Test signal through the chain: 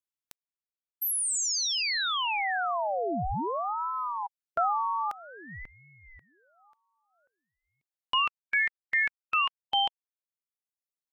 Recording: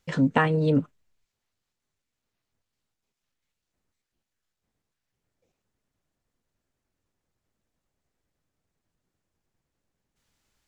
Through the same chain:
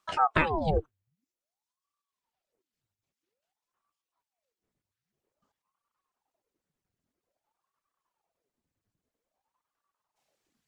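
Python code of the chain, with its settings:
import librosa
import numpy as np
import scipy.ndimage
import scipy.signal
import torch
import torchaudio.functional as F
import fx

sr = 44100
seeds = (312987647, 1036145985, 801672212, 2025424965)

y = fx.dereverb_blind(x, sr, rt60_s=1.3)
y = fx.ring_lfo(y, sr, carrier_hz=630.0, swing_pct=85, hz=0.51)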